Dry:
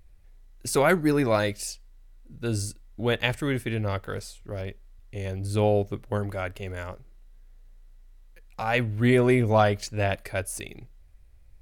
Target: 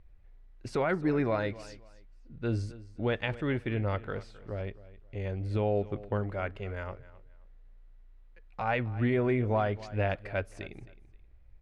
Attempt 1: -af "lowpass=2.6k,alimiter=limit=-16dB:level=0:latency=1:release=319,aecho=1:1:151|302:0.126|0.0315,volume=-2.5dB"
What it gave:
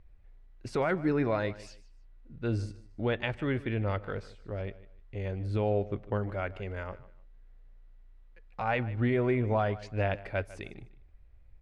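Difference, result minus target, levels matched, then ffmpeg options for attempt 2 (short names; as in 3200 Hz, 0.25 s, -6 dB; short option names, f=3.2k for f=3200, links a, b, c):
echo 0.113 s early
-af "lowpass=2.6k,alimiter=limit=-16dB:level=0:latency=1:release=319,aecho=1:1:264|528:0.126|0.0315,volume=-2.5dB"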